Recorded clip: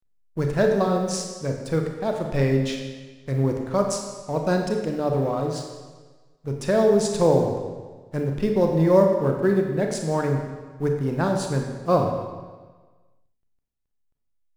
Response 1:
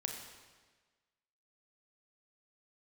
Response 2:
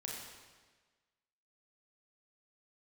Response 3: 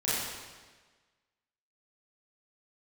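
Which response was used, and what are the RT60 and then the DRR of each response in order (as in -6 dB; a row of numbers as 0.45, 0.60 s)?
1; 1.4, 1.4, 1.4 s; 2.0, -3.0, -11.0 dB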